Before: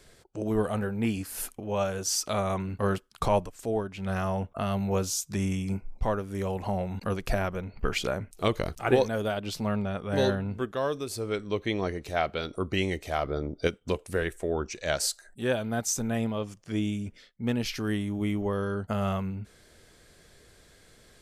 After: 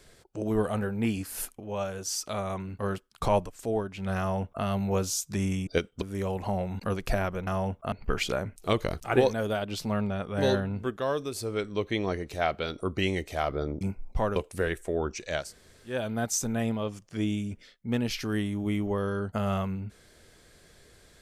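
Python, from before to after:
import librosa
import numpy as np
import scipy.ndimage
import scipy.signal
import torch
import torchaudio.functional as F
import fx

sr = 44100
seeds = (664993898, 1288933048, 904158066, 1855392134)

y = fx.edit(x, sr, fx.clip_gain(start_s=1.45, length_s=1.78, db=-4.0),
    fx.duplicate(start_s=4.19, length_s=0.45, to_s=7.67),
    fx.swap(start_s=5.67, length_s=0.55, other_s=13.56, other_length_s=0.35),
    fx.room_tone_fill(start_s=14.96, length_s=0.53, crossfade_s=0.24), tone=tone)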